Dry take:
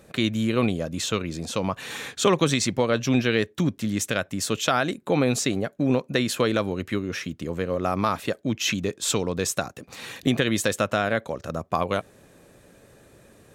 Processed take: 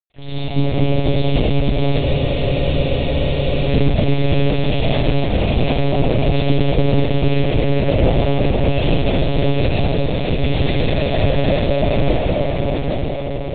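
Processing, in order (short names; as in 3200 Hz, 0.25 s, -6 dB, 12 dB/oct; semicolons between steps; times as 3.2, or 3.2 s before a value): bell 1100 Hz -8.5 dB 1.7 oct; notches 60/120/180/240/300/360/420 Hz; dispersion highs, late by 47 ms, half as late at 1100 Hz; companded quantiser 2-bit; transient shaper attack -4 dB, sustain +5 dB; low shelf 410 Hz +5.5 dB; fixed phaser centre 350 Hz, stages 6; diffused feedback echo 0.749 s, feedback 49%, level -4 dB; reverb RT60 4.2 s, pre-delay 85 ms, DRR -12.5 dB; monotone LPC vocoder at 8 kHz 140 Hz; spectral freeze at 2.03, 1.66 s; gain -3 dB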